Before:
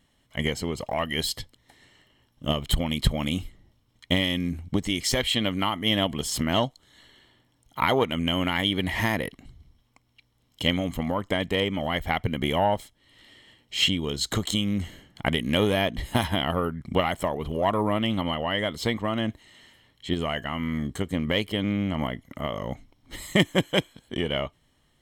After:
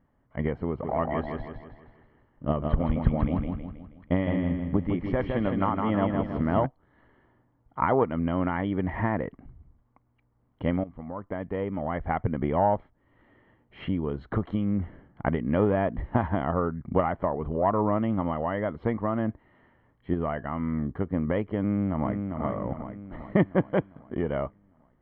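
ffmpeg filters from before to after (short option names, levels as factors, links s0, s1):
-filter_complex "[0:a]asplit=3[s0][s1][s2];[s0]afade=t=out:st=0.83:d=0.02[s3];[s1]aecho=1:1:160|320|480|640|800|960:0.631|0.29|0.134|0.0614|0.0283|0.013,afade=t=in:st=0.83:d=0.02,afade=t=out:st=6.65:d=0.02[s4];[s2]afade=t=in:st=6.65:d=0.02[s5];[s3][s4][s5]amix=inputs=3:normalize=0,asplit=2[s6][s7];[s7]afade=t=in:st=21.65:d=0.01,afade=t=out:st=22.42:d=0.01,aecho=0:1:400|800|1200|1600|2000|2400|2800:0.562341|0.309288|0.170108|0.0935595|0.0514577|0.0283018|0.015566[s8];[s6][s8]amix=inputs=2:normalize=0,asplit=2[s9][s10];[s9]atrim=end=10.84,asetpts=PTS-STARTPTS,afade=t=out:st=10.836:d=0.004:c=hsin:silence=0.16788[s11];[s10]atrim=start=10.84,asetpts=PTS-STARTPTS,afade=t=in:d=1.32:silence=0.16788[s12];[s11][s12]concat=n=2:v=0:a=1,lowpass=f=1500:w=0.5412,lowpass=f=1500:w=1.3066"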